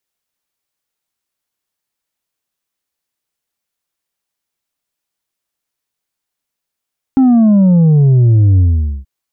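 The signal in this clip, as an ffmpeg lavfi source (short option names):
-f lavfi -i "aevalsrc='0.501*clip((1.88-t)/0.46,0,1)*tanh(1.58*sin(2*PI*270*1.88/log(65/270)*(exp(log(65/270)*t/1.88)-1)))/tanh(1.58)':d=1.88:s=44100"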